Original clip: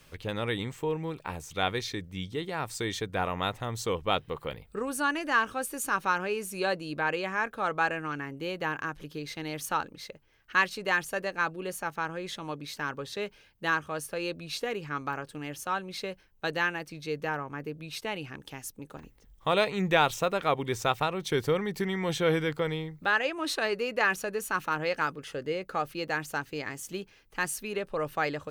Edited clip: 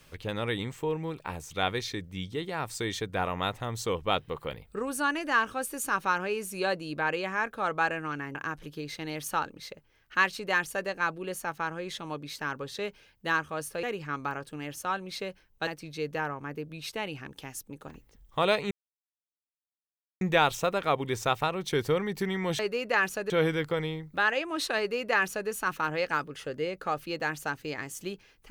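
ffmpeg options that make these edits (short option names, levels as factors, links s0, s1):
-filter_complex "[0:a]asplit=7[s0][s1][s2][s3][s4][s5][s6];[s0]atrim=end=8.352[s7];[s1]atrim=start=8.728:end=14.212[s8];[s2]atrim=start=14.648:end=16.492[s9];[s3]atrim=start=16.758:end=19.8,asetpts=PTS-STARTPTS,afade=t=out:st=3.038:d=0.004:c=hsin,apad=pad_dur=1.5[s10];[s4]atrim=start=19.8:end=22.182,asetpts=PTS-STARTPTS,afade=t=in:d=0.004:c=hsin[s11];[s5]atrim=start=23.658:end=24.372[s12];[s6]atrim=start=22.178[s13];[s7][s8]acrossfade=d=0.004:c1=hsin:c2=hsin[s14];[s14][s9]acrossfade=d=0.004:c1=hsin:c2=hsin[s15];[s10][s11]concat=n=2:v=0:a=1[s16];[s15][s16]acrossfade=d=0.004:c1=hsin:c2=hsin[s17];[s17][s12]acrossfade=d=0.004:c1=hsin:c2=hsin[s18];[s18][s13]acrossfade=d=0.004:c1=hsin:c2=hsin"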